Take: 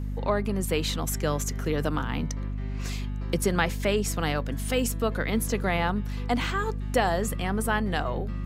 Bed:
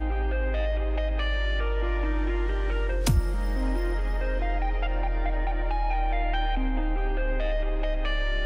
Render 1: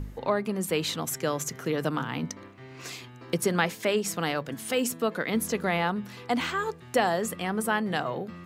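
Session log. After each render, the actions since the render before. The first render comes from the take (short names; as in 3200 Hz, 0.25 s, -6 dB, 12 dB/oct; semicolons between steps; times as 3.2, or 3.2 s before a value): de-hum 50 Hz, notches 5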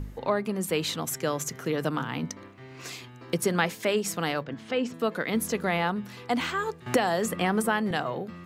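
4.44–4.94 air absorption 190 m; 6.86–7.91 three-band squash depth 100%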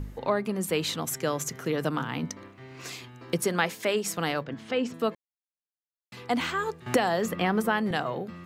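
3.42–4.18 low shelf 150 Hz -8.5 dB; 5.15–6.12 mute; 7.08–7.77 bell 9000 Hz -11.5 dB 0.53 oct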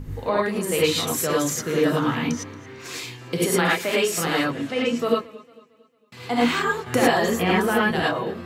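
non-linear reverb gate 0.13 s rising, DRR -6 dB; warbling echo 0.226 s, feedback 44%, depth 83 cents, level -21 dB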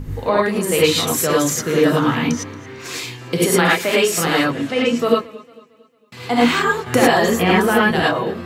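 gain +5.5 dB; limiter -2 dBFS, peak gain reduction 2 dB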